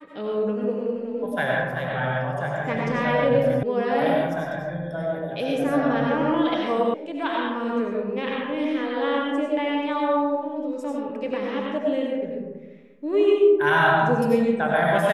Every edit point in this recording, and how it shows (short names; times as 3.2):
3.63 sound cut off
6.94 sound cut off